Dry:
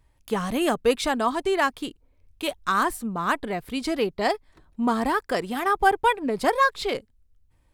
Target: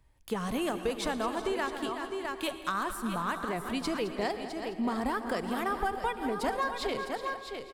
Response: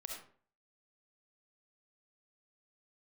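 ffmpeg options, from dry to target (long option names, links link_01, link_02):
-filter_complex "[0:a]asplit=2[link_01][link_02];[link_02]aecho=0:1:372|657:0.178|0.282[link_03];[link_01][link_03]amix=inputs=2:normalize=0,acrossover=split=130[link_04][link_05];[link_05]acompressor=threshold=-27dB:ratio=4[link_06];[link_04][link_06]amix=inputs=2:normalize=0,aecho=1:1:213|426|639|852|1065:0.211|0.114|0.0616|0.0333|0.018,asplit=2[link_07][link_08];[1:a]atrim=start_sample=2205,asetrate=25578,aresample=44100[link_09];[link_08][link_09]afir=irnorm=-1:irlink=0,volume=-10dB[link_10];[link_07][link_10]amix=inputs=2:normalize=0,volume=-4.5dB"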